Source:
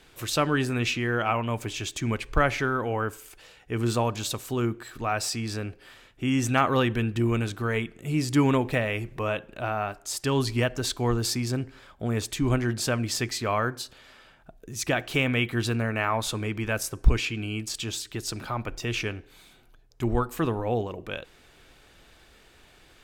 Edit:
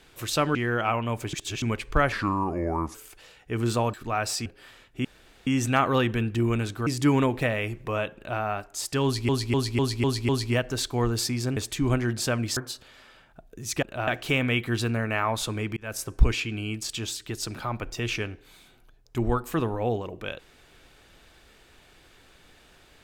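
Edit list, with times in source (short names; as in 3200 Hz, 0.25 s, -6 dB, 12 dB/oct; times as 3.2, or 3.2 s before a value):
0.55–0.96 cut
1.74–2.03 reverse
2.53–3.15 speed 75%
4.14–4.88 cut
5.4–5.69 cut
6.28 insert room tone 0.42 s
7.68–8.18 cut
9.47–9.72 copy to 14.93
10.35–10.6 loop, 6 plays
11.63–12.17 cut
13.17–13.67 cut
16.62–16.89 fade in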